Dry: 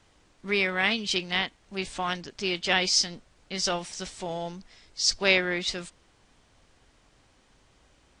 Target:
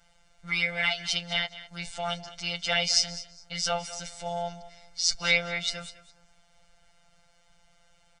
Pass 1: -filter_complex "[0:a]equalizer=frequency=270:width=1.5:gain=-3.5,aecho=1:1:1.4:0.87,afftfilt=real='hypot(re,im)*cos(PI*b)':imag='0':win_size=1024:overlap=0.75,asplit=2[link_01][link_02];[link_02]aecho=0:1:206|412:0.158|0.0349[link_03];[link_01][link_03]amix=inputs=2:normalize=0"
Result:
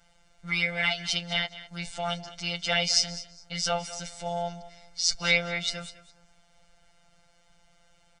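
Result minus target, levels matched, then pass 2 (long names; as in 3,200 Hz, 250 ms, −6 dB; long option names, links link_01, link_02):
250 Hz band +3.0 dB
-filter_complex "[0:a]equalizer=frequency=270:width=1.5:gain=-11,aecho=1:1:1.4:0.87,afftfilt=real='hypot(re,im)*cos(PI*b)':imag='0':win_size=1024:overlap=0.75,asplit=2[link_01][link_02];[link_02]aecho=0:1:206|412:0.158|0.0349[link_03];[link_01][link_03]amix=inputs=2:normalize=0"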